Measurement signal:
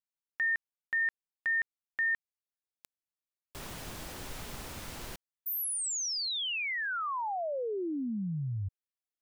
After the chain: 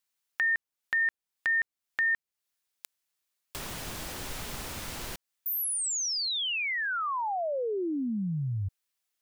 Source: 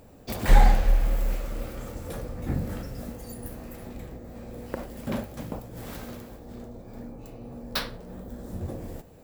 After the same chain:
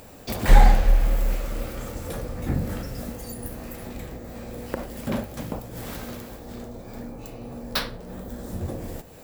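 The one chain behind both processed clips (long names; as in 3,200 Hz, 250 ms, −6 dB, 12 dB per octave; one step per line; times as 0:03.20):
one half of a high-frequency compander encoder only
level +3 dB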